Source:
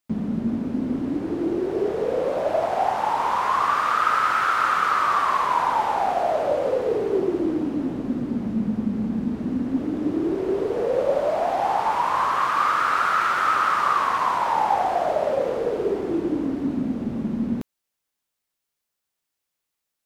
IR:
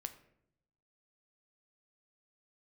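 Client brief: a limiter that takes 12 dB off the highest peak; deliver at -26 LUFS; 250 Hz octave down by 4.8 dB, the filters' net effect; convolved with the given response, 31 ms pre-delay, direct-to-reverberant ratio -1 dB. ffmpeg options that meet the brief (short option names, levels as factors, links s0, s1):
-filter_complex "[0:a]equalizer=f=250:t=o:g=-6,alimiter=limit=0.0944:level=0:latency=1,asplit=2[s0][s1];[1:a]atrim=start_sample=2205,adelay=31[s2];[s1][s2]afir=irnorm=-1:irlink=0,volume=1.58[s3];[s0][s3]amix=inputs=2:normalize=0,volume=0.891"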